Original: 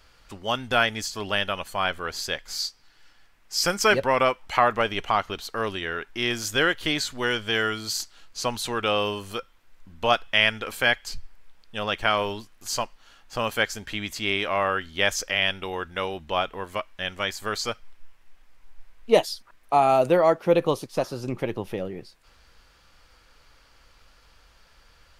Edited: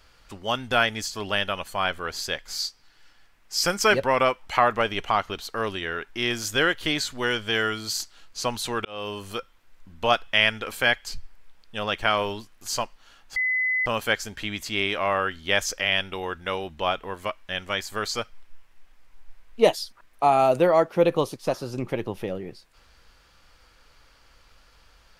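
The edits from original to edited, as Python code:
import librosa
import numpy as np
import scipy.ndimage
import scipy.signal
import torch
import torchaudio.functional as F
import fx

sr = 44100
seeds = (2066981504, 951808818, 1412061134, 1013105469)

y = fx.edit(x, sr, fx.fade_in_span(start_s=8.85, length_s=0.41),
    fx.insert_tone(at_s=13.36, length_s=0.5, hz=2020.0, db=-21.0), tone=tone)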